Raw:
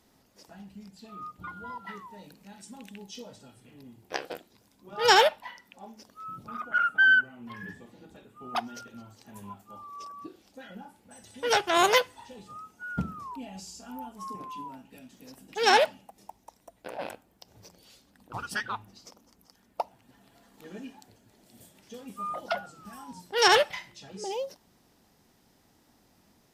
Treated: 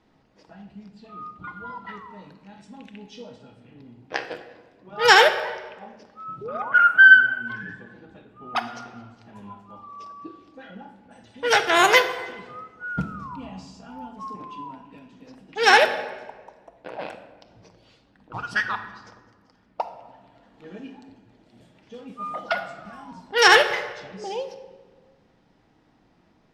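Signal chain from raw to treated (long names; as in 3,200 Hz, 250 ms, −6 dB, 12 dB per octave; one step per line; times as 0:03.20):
dynamic equaliser 1,800 Hz, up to +7 dB, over −40 dBFS, Q 1.2
low-pass that shuts in the quiet parts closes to 2,900 Hz, open at −22 dBFS
sound drawn into the spectrogram rise, 0:06.41–0:06.73, 380–1,200 Hz −36 dBFS
convolution reverb RT60 1.4 s, pre-delay 6 ms, DRR 7.5 dB
level +2.5 dB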